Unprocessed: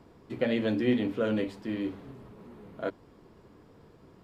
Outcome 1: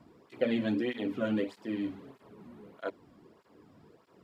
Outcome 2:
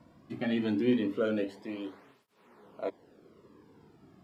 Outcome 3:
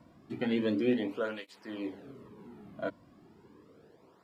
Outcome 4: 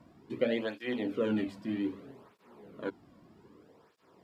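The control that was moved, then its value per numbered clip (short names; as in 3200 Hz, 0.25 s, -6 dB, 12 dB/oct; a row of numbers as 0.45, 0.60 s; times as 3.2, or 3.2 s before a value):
tape flanging out of phase, nulls at: 1.6, 0.22, 0.34, 0.63 Hz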